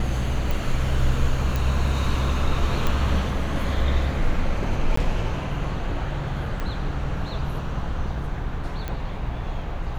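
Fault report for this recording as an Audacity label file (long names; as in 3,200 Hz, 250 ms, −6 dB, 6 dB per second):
0.510000	0.510000	click
1.560000	1.560000	click
2.870000	2.870000	click −10 dBFS
4.960000	4.970000	drop-out 14 ms
6.600000	6.600000	click −16 dBFS
8.880000	8.880000	click −17 dBFS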